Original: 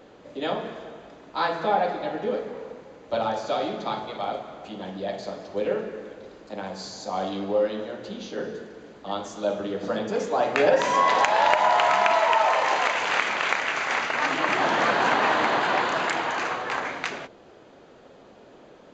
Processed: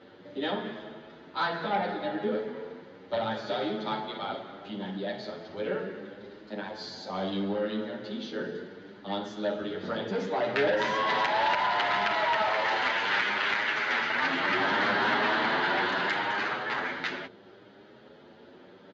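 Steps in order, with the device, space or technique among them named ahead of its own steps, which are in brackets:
barber-pole flanger into a guitar amplifier (barber-pole flanger 8.6 ms +0.7 Hz; soft clipping −20.5 dBFS, distortion −14 dB; loudspeaker in its box 110–4,300 Hz, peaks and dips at 150 Hz −4 dB, 290 Hz −4 dB, 500 Hz −7 dB, 710 Hz −9 dB, 1,100 Hz −8 dB, 2,500 Hz −7 dB)
level +5.5 dB

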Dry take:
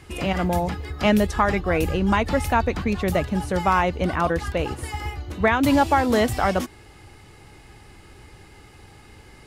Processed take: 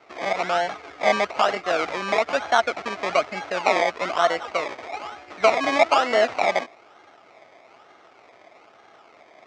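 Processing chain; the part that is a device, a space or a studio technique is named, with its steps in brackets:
circuit-bent sampling toy (sample-and-hold swept by an LFO 25×, swing 60% 1.1 Hz; loudspeaker in its box 440–6,000 Hz, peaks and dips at 670 Hz +10 dB, 1,300 Hz +8 dB, 2,200 Hz +9 dB)
level −2.5 dB

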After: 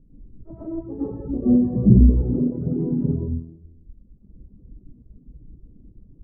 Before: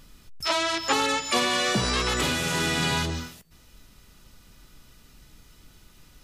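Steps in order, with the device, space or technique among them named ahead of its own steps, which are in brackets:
next room (low-pass filter 370 Hz 24 dB per octave; convolution reverb RT60 1.0 s, pre-delay 94 ms, DRR −11 dB)
reverb reduction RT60 1.3 s
0:01.19–0:02.22: spectral tilt −2 dB per octave
level −1 dB

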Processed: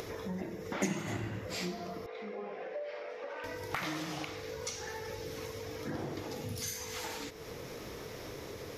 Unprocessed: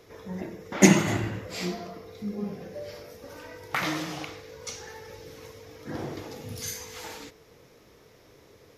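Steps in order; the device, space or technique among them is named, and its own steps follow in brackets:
0:02.06–0:03.44: Chebyshev band-pass filter 570–2,500 Hz, order 2
upward and downward compression (upward compression, threshold −41 dBFS; downward compressor 3 to 1, threshold −44 dBFS, peak gain reduction 24 dB)
level +5.5 dB

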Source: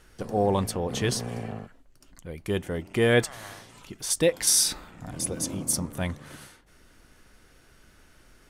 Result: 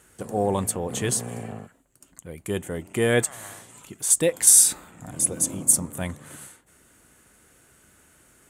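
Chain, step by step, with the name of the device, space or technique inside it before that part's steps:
budget condenser microphone (high-pass filter 79 Hz 12 dB per octave; high shelf with overshoot 6,300 Hz +6 dB, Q 3)

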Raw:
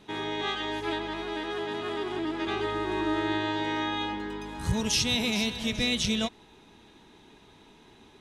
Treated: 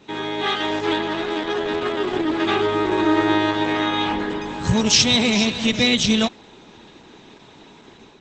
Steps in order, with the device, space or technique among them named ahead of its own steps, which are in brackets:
video call (high-pass filter 110 Hz 12 dB per octave; automatic gain control gain up to 5 dB; level +6 dB; Opus 12 kbit/s 48,000 Hz)

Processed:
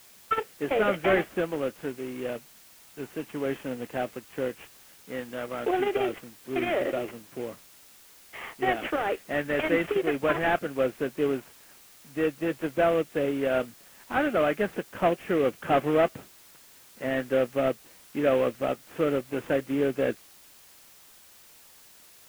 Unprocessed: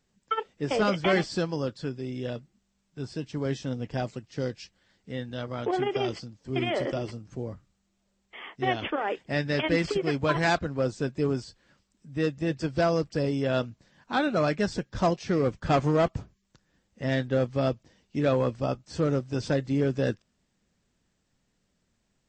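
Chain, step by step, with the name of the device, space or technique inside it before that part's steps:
army field radio (band-pass filter 300–3,200 Hz; variable-slope delta modulation 16 kbit/s; white noise bed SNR 25 dB)
dynamic equaliser 970 Hz, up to −7 dB, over −49 dBFS, Q 4.3
level +3.5 dB

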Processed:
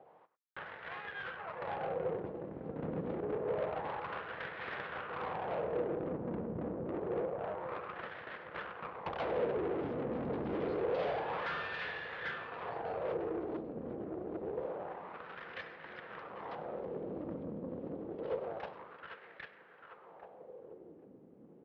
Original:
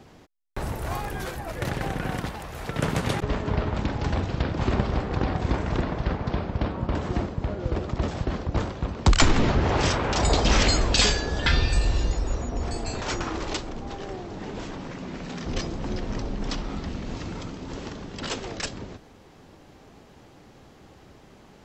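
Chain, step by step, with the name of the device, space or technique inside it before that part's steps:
tape delay 797 ms, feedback 59%, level −5 dB, low-pass 2,100 Hz
single-tap delay 100 ms −16 dB
wah-wah guitar rig (LFO wah 0.27 Hz 250–1,800 Hz, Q 2.9; tube saturation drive 37 dB, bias 0.75; loudspeaker in its box 78–3,600 Hz, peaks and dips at 160 Hz +4 dB, 260 Hz −6 dB, 490 Hz +9 dB)
level +2.5 dB

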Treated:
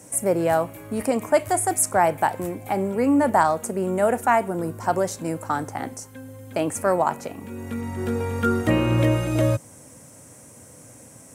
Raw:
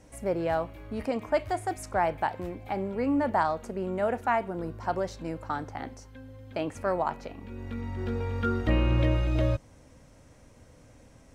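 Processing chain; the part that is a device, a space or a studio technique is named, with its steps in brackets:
budget condenser microphone (high-pass filter 100 Hz 24 dB per octave; high shelf with overshoot 6,200 Hz +14 dB, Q 1.5)
level +7.5 dB

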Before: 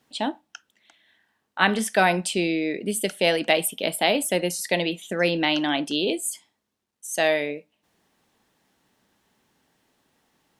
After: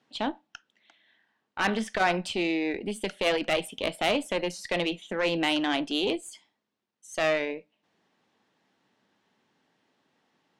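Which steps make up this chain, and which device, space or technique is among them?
valve radio (band-pass filter 140–4,700 Hz; tube saturation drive 16 dB, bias 0.55; saturating transformer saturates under 280 Hz)

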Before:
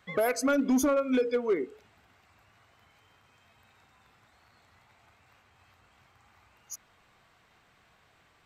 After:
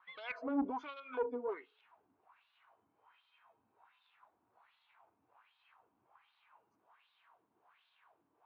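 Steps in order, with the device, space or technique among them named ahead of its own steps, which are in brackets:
wah-wah guitar rig (LFO wah 1.3 Hz 270–3,900 Hz, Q 3.5; tube saturation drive 27 dB, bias 0.3; loudspeaker in its box 84–3,700 Hz, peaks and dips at 160 Hz −5 dB, 240 Hz −6 dB, 380 Hz −3 dB, 540 Hz −4 dB, 960 Hz +8 dB, 2,000 Hz −6 dB)
level +2.5 dB

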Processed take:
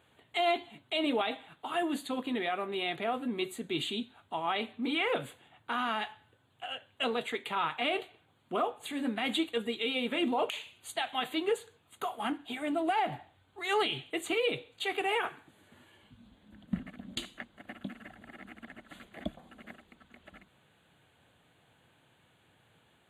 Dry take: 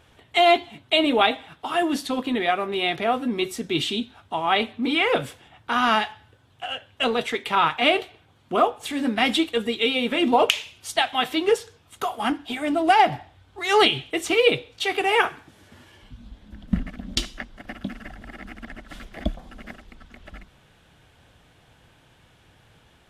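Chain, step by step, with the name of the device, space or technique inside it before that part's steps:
PA system with an anti-feedback notch (high-pass filter 120 Hz 12 dB per octave; Butterworth band-reject 5,400 Hz, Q 2.3; brickwall limiter −12 dBFS, peak gain reduction 11 dB)
level −8.5 dB

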